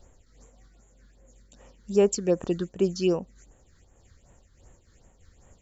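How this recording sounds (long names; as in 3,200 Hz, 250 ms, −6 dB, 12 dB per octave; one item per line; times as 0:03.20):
phaser sweep stages 6, 2.6 Hz, lowest notch 680–4,700 Hz
amplitude modulation by smooth noise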